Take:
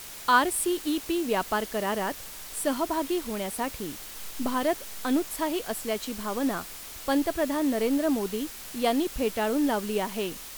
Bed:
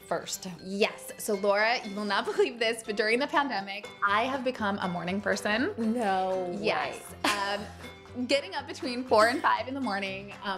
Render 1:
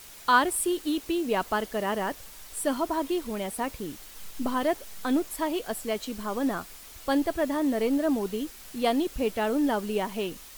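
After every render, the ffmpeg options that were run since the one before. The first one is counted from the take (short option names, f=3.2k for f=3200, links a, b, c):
-af "afftdn=nr=6:nf=-42"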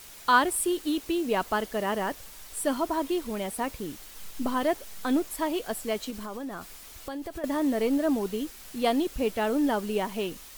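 -filter_complex "[0:a]asettb=1/sr,asplit=3[a][b][c];[a]atrim=end=6.104[d];[b]atrim=start=6.1:end=7.44,asetpts=PTS-STARTPTS,afade=t=in:d=0.004:c=qsin,afade=t=out:st=1.336:d=0.004:c=qsin,acompressor=threshold=-32dB:ratio=10:attack=3.2:release=140:knee=1:detection=peak[e];[c]atrim=start=7.436[f];[d][e]acrossfade=d=0.004:c1=hsin:c2=qsin[g];[g][f]acrossfade=d=0.004:c1=qsin:c2=hsin"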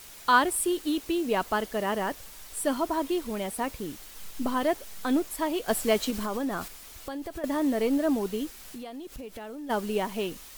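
-filter_complex "[0:a]asplit=3[a][b][c];[a]afade=t=out:st=8.56:d=0.02[d];[b]acompressor=threshold=-37dB:ratio=8:attack=3.2:release=140:knee=1:detection=peak,afade=t=in:st=8.56:d=0.02,afade=t=out:st=9.69:d=0.02[e];[c]afade=t=in:st=9.69:d=0.02[f];[d][e][f]amix=inputs=3:normalize=0,asplit=3[g][h][i];[g]atrim=end=5.682[j];[h]atrim=start=5.678:end=6.682,asetpts=PTS-STARTPTS,volume=6dB[k];[i]atrim=start=6.678[l];[j][k]acrossfade=d=0.004:c1=hsin:c2=hsin[m];[m][l]acrossfade=d=0.004:c1=hsin:c2=hsin"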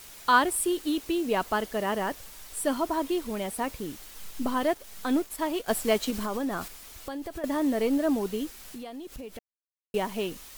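-filter_complex "[0:a]asettb=1/sr,asplit=3[a][b][c];[a]atrim=end=4.694[d];[b]atrim=start=4.69:end=6.08,asetpts=PTS-STARTPTS,afade=t=in:d=0.004:c=qsin,afade=t=out:st=1.386:d=0.004:c=qsin,aeval=exprs='sgn(val(0))*max(abs(val(0))-0.00398,0)':c=same[e];[c]atrim=start=6.076[f];[d][e]acrossfade=d=0.004:c1=hsin:c2=qsin[g];[g][f]acrossfade=d=0.004:c1=qsin:c2=hsin,asplit=3[h][i][j];[h]atrim=end=9.39,asetpts=PTS-STARTPTS,afade=t=out:st=9.386:d=0.004:c=hsin[k];[i]atrim=start=9.39:end=9.94,asetpts=PTS-STARTPTS,volume=0[l];[j]atrim=start=9.94,asetpts=PTS-STARTPTS,afade=t=in:d=0.004:c=hsin[m];[k][l][m]concat=n=3:v=0:a=1"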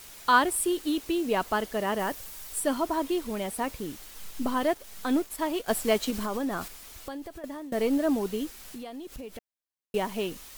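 -filter_complex "[0:a]asettb=1/sr,asplit=3[a][b][c];[a]atrim=end=1.994[d];[b]atrim=start=1.99:end=2.6,asetpts=PTS-STARTPTS,afade=t=in:d=0.004:c=qsin,afade=t=out:st=0.606:d=0.004:c=qsin,highshelf=f=8.3k:g=6.5[e];[c]atrim=start=2.596[f];[d][e]acrossfade=d=0.004:c1=hsin:c2=qsin[g];[g][f]acrossfade=d=0.004:c1=qsin:c2=hsin,asplit=2[h][i];[h]atrim=end=7.72,asetpts=PTS-STARTPTS,afade=t=out:st=6.98:d=0.74:silence=0.1[j];[i]atrim=start=7.72,asetpts=PTS-STARTPTS,afade=t=in:d=0.004:c=hsin:silence=0.1[k];[j][k]concat=n=2:v=0:a=1"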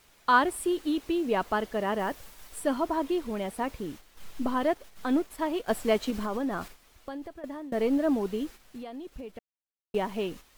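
-af "agate=range=-8dB:threshold=-42dB:ratio=16:detection=peak,highshelf=f=4.5k:g=-11"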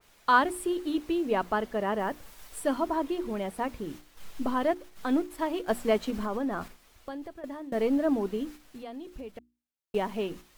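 -af "bandreject=f=60:t=h:w=6,bandreject=f=120:t=h:w=6,bandreject=f=180:t=h:w=6,bandreject=f=240:t=h:w=6,bandreject=f=300:t=h:w=6,bandreject=f=360:t=h:w=6,adynamicequalizer=threshold=0.00562:dfrequency=2300:dqfactor=0.7:tfrequency=2300:tqfactor=0.7:attack=5:release=100:ratio=0.375:range=2.5:mode=cutabove:tftype=highshelf"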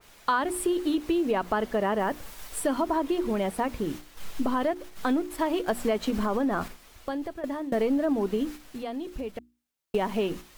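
-filter_complex "[0:a]asplit=2[a][b];[b]alimiter=limit=-22dB:level=0:latency=1:release=91,volume=1.5dB[c];[a][c]amix=inputs=2:normalize=0,acompressor=threshold=-22dB:ratio=5"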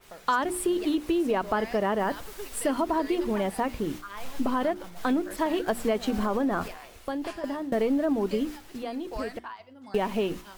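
-filter_complex "[1:a]volume=-16dB[a];[0:a][a]amix=inputs=2:normalize=0"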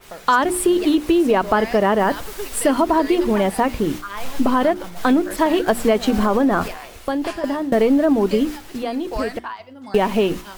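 -af "volume=9.5dB,alimiter=limit=-3dB:level=0:latency=1"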